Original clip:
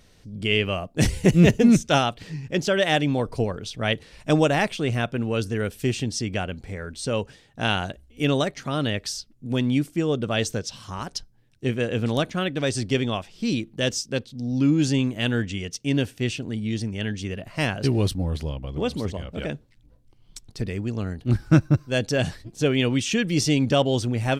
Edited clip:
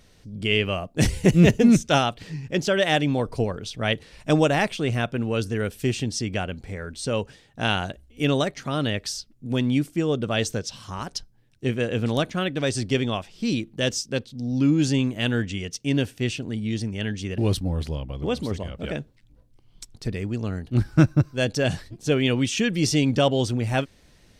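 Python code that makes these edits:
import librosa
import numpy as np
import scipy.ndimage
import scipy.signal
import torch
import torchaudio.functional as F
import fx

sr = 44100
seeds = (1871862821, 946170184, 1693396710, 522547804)

y = fx.edit(x, sr, fx.cut(start_s=17.38, length_s=0.54), tone=tone)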